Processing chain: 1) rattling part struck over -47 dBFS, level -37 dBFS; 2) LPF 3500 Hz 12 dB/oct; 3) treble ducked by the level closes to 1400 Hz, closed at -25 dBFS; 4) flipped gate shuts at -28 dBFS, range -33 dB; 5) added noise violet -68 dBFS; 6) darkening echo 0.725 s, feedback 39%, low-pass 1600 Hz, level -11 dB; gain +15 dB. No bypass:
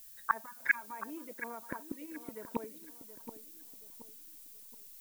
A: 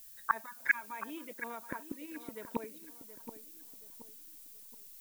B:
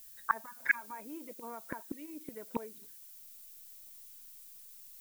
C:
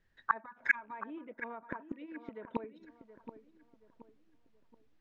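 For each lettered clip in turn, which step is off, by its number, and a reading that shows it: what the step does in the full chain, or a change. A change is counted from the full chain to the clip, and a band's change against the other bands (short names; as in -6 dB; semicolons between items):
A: 3, 4 kHz band +2.5 dB; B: 6, echo-to-direct -13.0 dB to none; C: 5, 4 kHz band -6.0 dB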